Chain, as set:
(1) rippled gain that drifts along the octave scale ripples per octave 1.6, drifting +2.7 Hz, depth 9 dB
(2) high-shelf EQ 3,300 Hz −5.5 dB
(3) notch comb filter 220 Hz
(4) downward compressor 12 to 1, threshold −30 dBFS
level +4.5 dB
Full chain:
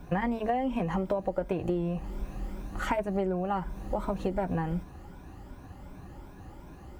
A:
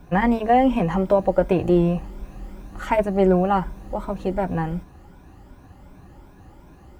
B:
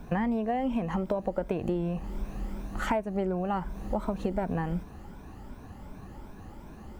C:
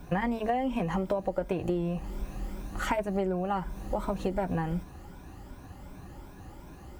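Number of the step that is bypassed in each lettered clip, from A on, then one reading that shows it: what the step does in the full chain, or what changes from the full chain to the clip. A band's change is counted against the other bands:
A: 4, average gain reduction 4.5 dB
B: 3, 250 Hz band +1.5 dB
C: 2, 8 kHz band +4.5 dB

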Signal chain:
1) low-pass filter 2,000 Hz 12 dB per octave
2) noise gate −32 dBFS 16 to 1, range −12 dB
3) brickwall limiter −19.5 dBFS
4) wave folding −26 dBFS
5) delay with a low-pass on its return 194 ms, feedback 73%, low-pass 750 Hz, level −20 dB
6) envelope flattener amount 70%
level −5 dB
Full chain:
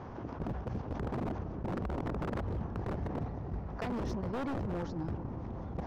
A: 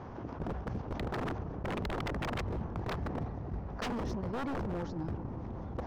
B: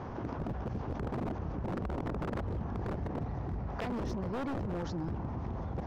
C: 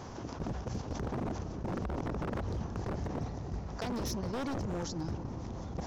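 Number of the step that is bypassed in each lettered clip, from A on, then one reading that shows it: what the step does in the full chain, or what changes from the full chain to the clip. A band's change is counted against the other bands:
3, average gain reduction 1.5 dB
2, change in momentary loudness spread −2 LU
1, 4 kHz band +8.5 dB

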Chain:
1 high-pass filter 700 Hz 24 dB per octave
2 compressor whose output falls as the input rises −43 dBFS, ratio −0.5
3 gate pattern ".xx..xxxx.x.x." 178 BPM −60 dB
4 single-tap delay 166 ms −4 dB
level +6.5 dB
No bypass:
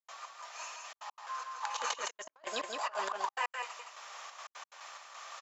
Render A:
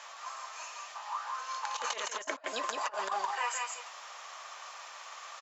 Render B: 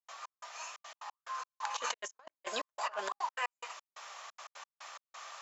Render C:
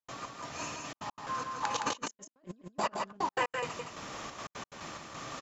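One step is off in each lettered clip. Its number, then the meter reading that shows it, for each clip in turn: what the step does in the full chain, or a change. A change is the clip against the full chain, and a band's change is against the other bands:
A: 3, change in momentary loudness spread −1 LU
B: 4, change in crest factor +2.5 dB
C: 1, 250 Hz band +12.0 dB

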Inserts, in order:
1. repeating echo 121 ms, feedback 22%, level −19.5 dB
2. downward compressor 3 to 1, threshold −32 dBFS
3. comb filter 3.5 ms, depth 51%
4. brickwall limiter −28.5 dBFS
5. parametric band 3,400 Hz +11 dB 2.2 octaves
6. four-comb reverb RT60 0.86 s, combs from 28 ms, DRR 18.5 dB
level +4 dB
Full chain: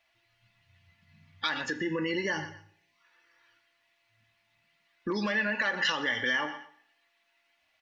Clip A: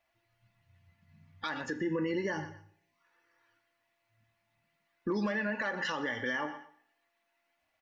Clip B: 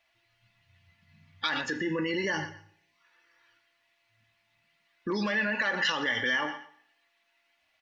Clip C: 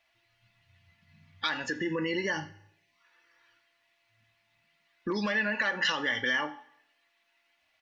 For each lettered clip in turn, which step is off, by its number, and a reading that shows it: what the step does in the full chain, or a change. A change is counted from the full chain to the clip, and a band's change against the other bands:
5, 4 kHz band −9.5 dB
2, average gain reduction 4.5 dB
1, change in momentary loudness spread −1 LU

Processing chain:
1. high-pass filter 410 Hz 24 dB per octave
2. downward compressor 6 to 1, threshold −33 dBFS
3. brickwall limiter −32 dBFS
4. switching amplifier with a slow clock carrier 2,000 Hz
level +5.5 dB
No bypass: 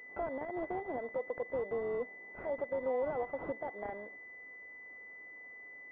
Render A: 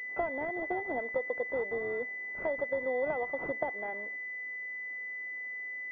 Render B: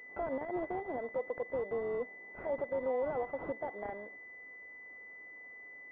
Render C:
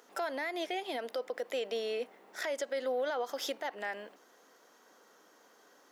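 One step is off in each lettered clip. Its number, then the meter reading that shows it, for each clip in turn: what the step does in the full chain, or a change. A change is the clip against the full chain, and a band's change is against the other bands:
3, change in crest factor +4.5 dB
2, average gain reduction 2.5 dB
4, 2 kHz band +3.0 dB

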